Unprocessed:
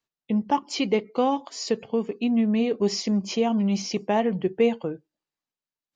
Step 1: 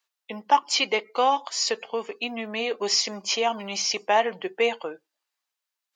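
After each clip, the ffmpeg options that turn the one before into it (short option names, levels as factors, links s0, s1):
-af "highpass=830,volume=2.51"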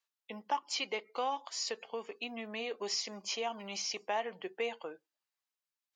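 -af "acompressor=threshold=0.0355:ratio=1.5,volume=0.355"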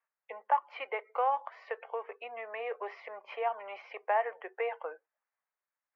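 -af "asuperpass=centerf=1000:order=8:qfactor=0.62,volume=2"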